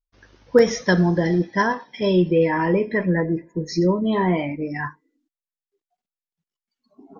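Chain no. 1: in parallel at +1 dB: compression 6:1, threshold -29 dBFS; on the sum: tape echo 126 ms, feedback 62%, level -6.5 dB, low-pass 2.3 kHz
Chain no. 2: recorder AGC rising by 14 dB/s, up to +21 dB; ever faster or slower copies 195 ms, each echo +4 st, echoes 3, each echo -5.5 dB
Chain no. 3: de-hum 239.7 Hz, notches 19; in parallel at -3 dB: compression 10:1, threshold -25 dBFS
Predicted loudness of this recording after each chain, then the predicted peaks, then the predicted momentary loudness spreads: -18.0 LUFS, -18.5 LUFS, -19.0 LUFS; -2.0 dBFS, -2.5 dBFS, -3.0 dBFS; 7 LU, 15 LU, 7 LU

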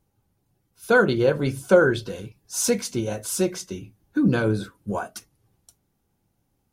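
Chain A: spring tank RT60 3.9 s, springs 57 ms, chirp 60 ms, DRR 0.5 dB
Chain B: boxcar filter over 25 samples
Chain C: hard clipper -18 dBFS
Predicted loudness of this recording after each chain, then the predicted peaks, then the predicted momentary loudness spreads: -21.0 LUFS, -24.5 LUFS, -25.5 LUFS; -3.5 dBFS, -5.5 dBFS, -18.0 dBFS; 15 LU, 18 LU, 14 LU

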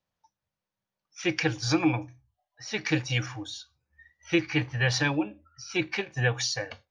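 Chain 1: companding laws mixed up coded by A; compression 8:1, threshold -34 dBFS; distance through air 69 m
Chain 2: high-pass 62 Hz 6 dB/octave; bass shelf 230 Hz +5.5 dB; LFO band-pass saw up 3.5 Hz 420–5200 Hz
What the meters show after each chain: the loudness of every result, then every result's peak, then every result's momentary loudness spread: -40.0 LUFS, -37.5 LUFS; -23.0 dBFS, -18.0 dBFS; 10 LU, 13 LU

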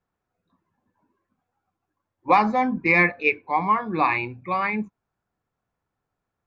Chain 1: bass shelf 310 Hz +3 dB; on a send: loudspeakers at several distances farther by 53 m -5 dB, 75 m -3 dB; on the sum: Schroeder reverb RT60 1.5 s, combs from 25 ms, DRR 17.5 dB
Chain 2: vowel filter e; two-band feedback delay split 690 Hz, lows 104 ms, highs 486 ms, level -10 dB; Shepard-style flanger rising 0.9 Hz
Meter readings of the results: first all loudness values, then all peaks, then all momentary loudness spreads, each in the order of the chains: -19.0 LUFS, -39.0 LUFS; -4.5 dBFS, -21.5 dBFS; 10 LU, 18 LU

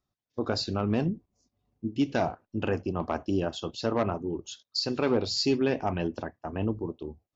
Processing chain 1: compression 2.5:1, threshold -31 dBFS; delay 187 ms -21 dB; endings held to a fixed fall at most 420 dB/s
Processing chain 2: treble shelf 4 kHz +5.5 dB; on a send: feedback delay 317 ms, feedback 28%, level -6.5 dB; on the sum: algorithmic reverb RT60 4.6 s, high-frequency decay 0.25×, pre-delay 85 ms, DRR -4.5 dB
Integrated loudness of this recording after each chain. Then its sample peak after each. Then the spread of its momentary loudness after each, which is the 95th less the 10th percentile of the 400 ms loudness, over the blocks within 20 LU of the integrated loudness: -35.0 LUFS, -22.0 LUFS; -17.0 dBFS, -8.0 dBFS; 7 LU, 6 LU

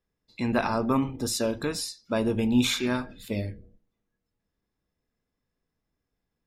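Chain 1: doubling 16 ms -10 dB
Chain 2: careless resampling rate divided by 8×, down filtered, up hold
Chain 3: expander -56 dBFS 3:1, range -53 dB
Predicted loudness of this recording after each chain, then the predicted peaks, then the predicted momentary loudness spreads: -26.5 LUFS, -28.0 LUFS, -27.5 LUFS; -10.0 dBFS, -12.5 dBFS, -12.0 dBFS; 11 LU, 9 LU, 10 LU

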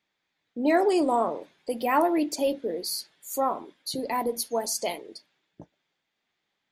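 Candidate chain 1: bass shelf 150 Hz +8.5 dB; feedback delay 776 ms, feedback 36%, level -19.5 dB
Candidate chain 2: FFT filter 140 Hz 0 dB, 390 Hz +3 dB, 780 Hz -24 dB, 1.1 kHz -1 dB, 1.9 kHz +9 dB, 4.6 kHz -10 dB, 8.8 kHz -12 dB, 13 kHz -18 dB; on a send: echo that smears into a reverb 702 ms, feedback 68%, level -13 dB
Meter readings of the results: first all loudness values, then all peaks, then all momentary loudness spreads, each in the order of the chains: -26.5 LUFS, -27.5 LUFS; -10.0 dBFS, -10.5 dBFS; 16 LU, 22 LU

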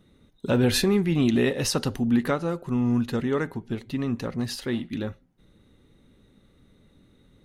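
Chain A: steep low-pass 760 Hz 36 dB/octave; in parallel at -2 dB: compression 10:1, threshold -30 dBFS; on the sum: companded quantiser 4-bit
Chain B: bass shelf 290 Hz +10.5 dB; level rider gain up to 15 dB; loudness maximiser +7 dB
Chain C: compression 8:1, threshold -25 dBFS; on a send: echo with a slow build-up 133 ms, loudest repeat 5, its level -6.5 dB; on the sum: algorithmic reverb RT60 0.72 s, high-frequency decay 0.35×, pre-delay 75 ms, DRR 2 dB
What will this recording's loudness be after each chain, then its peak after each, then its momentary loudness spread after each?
-23.5 LUFS, -11.0 LUFS, -26.0 LUFS; -12.0 dBFS, -1.0 dBFS, -12.0 dBFS; 9 LU, 21 LU, 13 LU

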